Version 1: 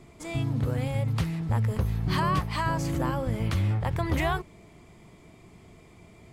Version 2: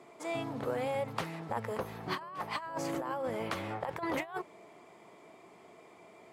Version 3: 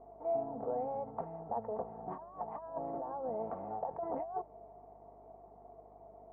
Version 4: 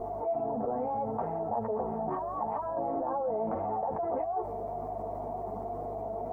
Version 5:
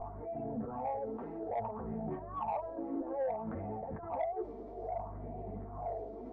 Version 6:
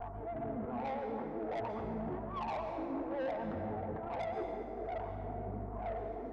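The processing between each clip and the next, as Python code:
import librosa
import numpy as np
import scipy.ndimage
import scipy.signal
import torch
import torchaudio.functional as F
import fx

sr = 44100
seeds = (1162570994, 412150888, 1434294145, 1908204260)

y1 = scipy.signal.sosfilt(scipy.signal.butter(2, 690.0, 'highpass', fs=sr, output='sos'), x)
y1 = fx.tilt_shelf(y1, sr, db=8.5, hz=1200.0)
y1 = fx.over_compress(y1, sr, threshold_db=-34.0, ratio=-0.5)
y2 = y1 + 0.44 * np.pad(y1, (int(4.4 * sr / 1000.0), 0))[:len(y1)]
y2 = fx.dmg_buzz(y2, sr, base_hz=50.0, harmonics=40, level_db=-58.0, tilt_db=-5, odd_only=False)
y2 = fx.ladder_lowpass(y2, sr, hz=830.0, resonance_pct=65)
y2 = y2 * 10.0 ** (3.0 / 20.0)
y3 = fx.chorus_voices(y2, sr, voices=6, hz=0.66, base_ms=11, depth_ms=2.7, mix_pct=50)
y3 = fx.env_flatten(y3, sr, amount_pct=70)
y3 = y3 * 10.0 ** (2.5 / 20.0)
y4 = fx.phaser_stages(y3, sr, stages=4, low_hz=120.0, high_hz=1100.0, hz=0.6, feedback_pct=45)
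y4 = 10.0 ** (-26.0 / 20.0) * np.tanh(y4 / 10.0 ** (-26.0 / 20.0))
y4 = fx.air_absorb(y4, sr, metres=170.0)
y5 = fx.vibrato(y4, sr, rate_hz=7.4, depth_cents=61.0)
y5 = fx.tube_stage(y5, sr, drive_db=36.0, bias=0.2)
y5 = fx.rev_plate(y5, sr, seeds[0], rt60_s=2.6, hf_ratio=0.55, predelay_ms=110, drr_db=5.0)
y5 = y5 * 10.0 ** (1.5 / 20.0)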